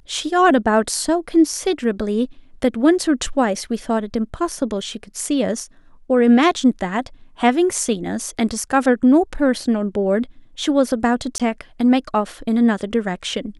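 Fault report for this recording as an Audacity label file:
11.380000	11.400000	dropout 17 ms

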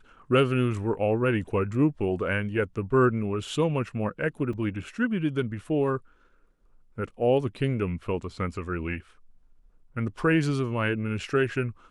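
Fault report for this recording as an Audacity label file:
4.530000	4.530000	dropout 3.3 ms

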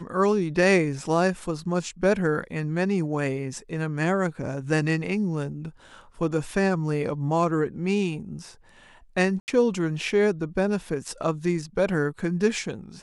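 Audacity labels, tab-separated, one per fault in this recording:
9.400000	9.480000	dropout 79 ms

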